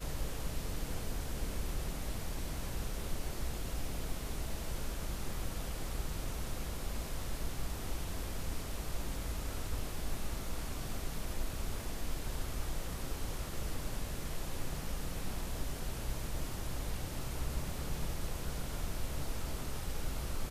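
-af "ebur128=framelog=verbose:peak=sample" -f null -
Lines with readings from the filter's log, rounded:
Integrated loudness:
  I:         -41.3 LUFS
  Threshold: -51.3 LUFS
Loudness range:
  LRA:         0.7 LU
  Threshold: -61.3 LUFS
  LRA low:   -41.6 LUFS
  LRA high:  -40.8 LUFS
Sample peak:
  Peak:      -22.3 dBFS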